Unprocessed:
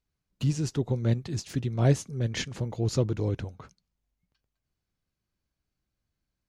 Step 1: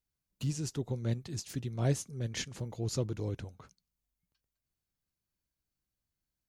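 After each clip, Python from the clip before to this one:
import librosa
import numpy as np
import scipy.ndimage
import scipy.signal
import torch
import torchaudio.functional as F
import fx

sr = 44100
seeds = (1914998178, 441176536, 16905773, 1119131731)

y = fx.high_shelf(x, sr, hz=6700.0, db=12.0)
y = F.gain(torch.from_numpy(y), -7.5).numpy()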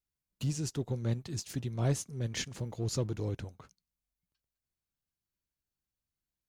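y = fx.leveller(x, sr, passes=1)
y = F.gain(torch.from_numpy(y), -2.5).numpy()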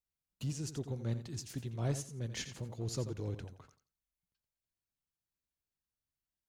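y = fx.echo_feedback(x, sr, ms=86, feedback_pct=19, wet_db=-11)
y = F.gain(torch.from_numpy(y), -5.0).numpy()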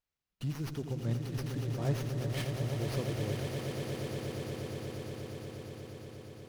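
y = fx.echo_swell(x, sr, ms=119, loudest=8, wet_db=-8.5)
y = fx.running_max(y, sr, window=5)
y = F.gain(torch.from_numpy(y), 2.0).numpy()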